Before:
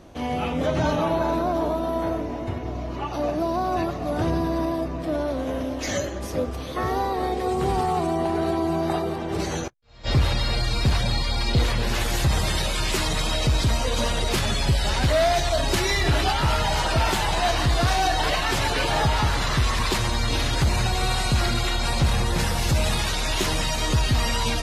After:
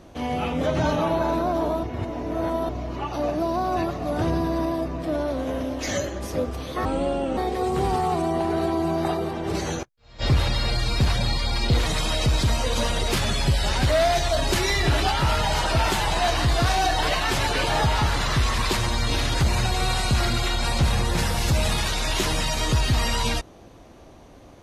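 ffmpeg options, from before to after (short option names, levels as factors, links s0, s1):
-filter_complex "[0:a]asplit=6[s0][s1][s2][s3][s4][s5];[s0]atrim=end=1.832[s6];[s1]atrim=start=1.828:end=2.692,asetpts=PTS-STARTPTS,areverse[s7];[s2]atrim=start=2.688:end=6.854[s8];[s3]atrim=start=6.85:end=7.22,asetpts=PTS-STARTPTS,asetrate=31311,aresample=44100[s9];[s4]atrim=start=7.216:end=11.712[s10];[s5]atrim=start=13.068[s11];[s6][s7]acrossfade=d=0.004:c1=hsin:c2=hsin[s12];[s12][s8]acrossfade=d=0.004:c1=hsin:c2=hsin[s13];[s13][s9]acrossfade=d=0.004:c1=hsin:c2=hsin[s14];[s14][s10]acrossfade=d=0.004:c1=hsin:c2=hsin[s15];[s15][s11]acrossfade=d=0.004:c1=hsin:c2=hsin"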